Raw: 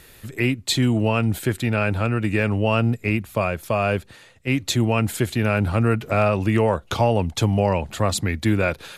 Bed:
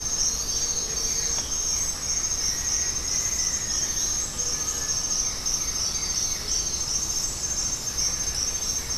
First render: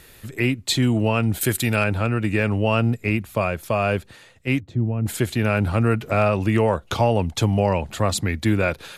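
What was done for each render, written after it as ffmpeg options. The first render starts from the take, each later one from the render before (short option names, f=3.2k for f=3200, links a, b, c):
-filter_complex "[0:a]asettb=1/sr,asplit=3[a][b][c];[a]atrim=end=1.414[d];[b]atrim=start=1.41:end=1.84,asetpts=PTS-STARTPTS,afade=t=in:d=0.004:c=qsin,afade=t=out:st=0.426:d=0.004:c=qsin,aemphasis=mode=production:type=75kf[e];[c]atrim=start=1.836[f];[d][e]acrossfade=d=0.004:c1=hsin:c2=qsin[g];[g][f]acrossfade=d=0.004:c1=qsin:c2=hsin,asettb=1/sr,asplit=3[h][i][j];[h]atrim=end=4.604[k];[i]atrim=start=4.6:end=5.06,asetpts=PTS-STARTPTS,afade=t=in:d=0.004:c=qsin,afade=t=out:st=0.456:d=0.004:c=qsin,bandpass=f=100:t=q:w=0.61[l];[j]atrim=start=5.056[m];[k][l]acrossfade=d=0.004:c1=hsin:c2=qsin[n];[n][m]acrossfade=d=0.004:c1=qsin:c2=hsin"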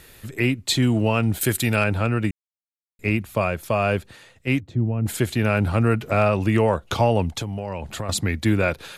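-filter_complex "[0:a]asettb=1/sr,asplit=3[a][b][c];[a]atrim=end=0.864[d];[b]atrim=start=0.86:end=1.56,asetpts=PTS-STARTPTS,afade=t=in:d=0.004:c=qsin,afade=t=out:st=0.696:d=0.004:c=qsin,aeval=exprs='sgn(val(0))*max(abs(val(0))-0.00282,0)':c=same[e];[c]atrim=start=1.556[f];[d][e]acrossfade=d=0.004:c1=hsin:c2=qsin[g];[g][f]acrossfade=d=0.004:c1=qsin:c2=hsin,asettb=1/sr,asplit=3[h][i][j];[h]atrim=end=7.314[k];[i]atrim=start=7.31:end=8.09,asetpts=PTS-STARTPTS,afade=t=in:d=0.004:c=qsin,afade=t=out:st=0.776:d=0.004:c=qsin,acompressor=threshold=-24dB:ratio=12:attack=3.2:release=140:knee=1:detection=peak[l];[j]atrim=start=8.086[m];[k][l]acrossfade=d=0.004:c1=hsin:c2=qsin[n];[n][m]acrossfade=d=0.004:c1=qsin:c2=hsin,asplit=3[o][p][q];[o]atrim=end=2.31,asetpts=PTS-STARTPTS,afade=t=out:st=2.306:d=0.004:c=hsin[r];[p]atrim=start=2.31:end=2.99,asetpts=PTS-STARTPTS,volume=0[s];[q]atrim=start=2.99,asetpts=PTS-STARTPTS,afade=t=in:d=0.004:c=hsin[t];[r][s][t]concat=n=3:v=0:a=1"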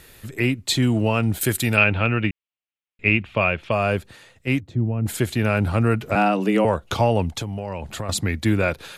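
-filter_complex "[0:a]asettb=1/sr,asplit=3[a][b][c];[a]atrim=end=1.774[d];[b]atrim=start=1.77:end=3.72,asetpts=PTS-STARTPTS,afade=t=in:d=0.004:c=qsin,afade=t=out:st=1.946:d=0.004:c=qsin,lowpass=f=2.8k:t=q:w=3[e];[c]atrim=start=3.716[f];[d][e]acrossfade=d=0.004:c1=hsin:c2=qsin[g];[g][f]acrossfade=d=0.004:c1=qsin:c2=hsin,asettb=1/sr,asplit=3[h][i][j];[h]atrim=end=6.154[k];[i]atrim=start=6.15:end=6.65,asetpts=PTS-STARTPTS,afade=t=in:d=0.004:c=qsin,afade=t=out:st=0.496:d=0.004:c=qsin,afreqshift=97[l];[j]atrim=start=6.646[m];[k][l]acrossfade=d=0.004:c1=hsin:c2=qsin[n];[n][m]acrossfade=d=0.004:c1=qsin:c2=hsin"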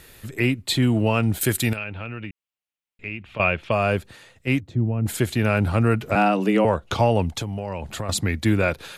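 -filter_complex "[0:a]asettb=1/sr,asplit=3[a][b][c];[a]atrim=end=0.624[d];[b]atrim=start=0.62:end=1.07,asetpts=PTS-STARTPTS,afade=t=in:d=0.004:c=qsin,afade=t=out:st=0.446:d=0.004:c=qsin,equalizer=f=6.2k:w=2:g=-7[e];[c]atrim=start=1.066[f];[d][e]acrossfade=d=0.004:c1=hsin:c2=qsin[g];[g][f]acrossfade=d=0.004:c1=qsin:c2=hsin,asettb=1/sr,asplit=3[h][i][j];[h]atrim=end=1.734[k];[i]atrim=start=1.73:end=3.4,asetpts=PTS-STARTPTS,afade=t=in:d=0.004:c=qsin,afade=t=out:st=1.666:d=0.004:c=qsin,acompressor=threshold=-39dB:ratio=2:attack=3.2:release=140:knee=1:detection=peak[l];[j]atrim=start=3.396[m];[k][l]acrossfade=d=0.004:c1=hsin:c2=qsin[n];[n][m]acrossfade=d=0.004:c1=qsin:c2=hsin,asettb=1/sr,asplit=3[o][p][q];[o]atrim=end=6.524[r];[p]atrim=start=6.52:end=6.99,asetpts=PTS-STARTPTS,afade=t=in:d=0.004:c=qsin,afade=t=out:st=0.466:d=0.004:c=qsin,highshelf=f=11k:g=-11[s];[q]atrim=start=6.986[t];[r][s]acrossfade=d=0.004:c1=hsin:c2=qsin[u];[u][t]acrossfade=d=0.004:c1=qsin:c2=hsin"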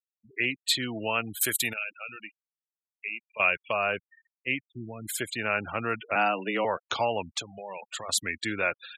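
-af "highpass=f=1.3k:p=1,afftfilt=real='re*gte(hypot(re,im),0.02)':imag='im*gte(hypot(re,im),0.02)':win_size=1024:overlap=0.75"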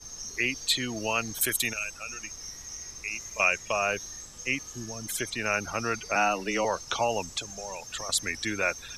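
-filter_complex "[1:a]volume=-15.5dB[a];[0:a][a]amix=inputs=2:normalize=0"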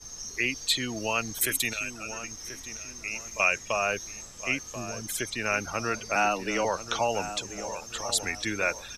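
-filter_complex "[0:a]asplit=2[a][b];[b]adelay=1035,lowpass=f=1.6k:p=1,volume=-10.5dB,asplit=2[c][d];[d]adelay=1035,lowpass=f=1.6k:p=1,volume=0.4,asplit=2[e][f];[f]adelay=1035,lowpass=f=1.6k:p=1,volume=0.4,asplit=2[g][h];[h]adelay=1035,lowpass=f=1.6k:p=1,volume=0.4[i];[a][c][e][g][i]amix=inputs=5:normalize=0"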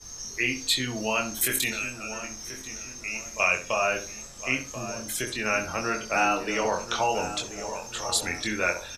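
-filter_complex "[0:a]asplit=2[a][b];[b]adelay=23,volume=-4dB[c];[a][c]amix=inputs=2:normalize=0,asplit=2[d][e];[e]adelay=65,lowpass=f=1.4k:p=1,volume=-8dB,asplit=2[f][g];[g]adelay=65,lowpass=f=1.4k:p=1,volume=0.32,asplit=2[h][i];[i]adelay=65,lowpass=f=1.4k:p=1,volume=0.32,asplit=2[j][k];[k]adelay=65,lowpass=f=1.4k:p=1,volume=0.32[l];[d][f][h][j][l]amix=inputs=5:normalize=0"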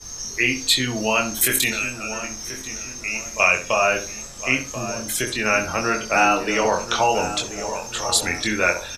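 -af "volume=6.5dB,alimiter=limit=-3dB:level=0:latency=1"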